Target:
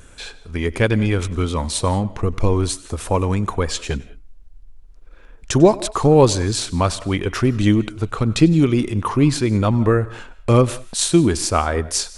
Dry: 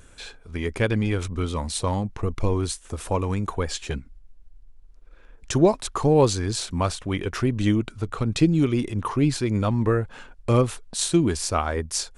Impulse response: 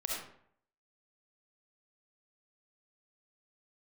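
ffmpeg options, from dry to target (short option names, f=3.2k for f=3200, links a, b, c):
-filter_complex "[0:a]asplit=2[a][b];[1:a]atrim=start_sample=2205,afade=t=out:st=0.17:d=0.01,atrim=end_sample=7938,adelay=97[c];[b][c]afir=irnorm=-1:irlink=0,volume=-20.5dB[d];[a][d]amix=inputs=2:normalize=0,volume=5.5dB"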